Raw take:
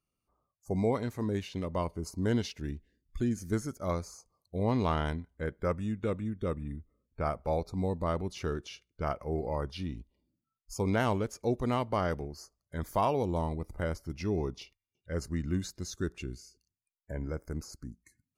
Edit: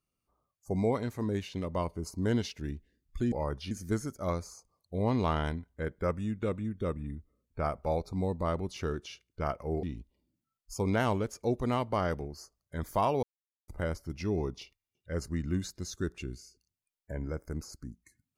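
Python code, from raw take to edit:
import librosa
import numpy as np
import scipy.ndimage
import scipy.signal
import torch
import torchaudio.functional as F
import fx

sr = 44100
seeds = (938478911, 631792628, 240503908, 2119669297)

y = fx.edit(x, sr, fx.move(start_s=9.44, length_s=0.39, to_s=3.32),
    fx.silence(start_s=13.23, length_s=0.45), tone=tone)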